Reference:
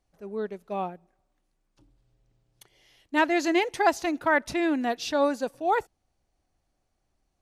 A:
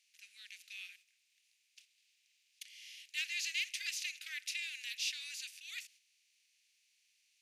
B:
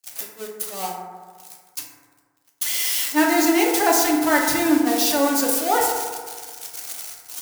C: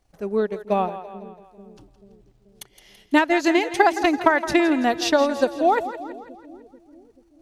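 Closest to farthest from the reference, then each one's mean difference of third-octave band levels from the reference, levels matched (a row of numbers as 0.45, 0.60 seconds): C, B, A; 4.5, 13.0, 19.5 decibels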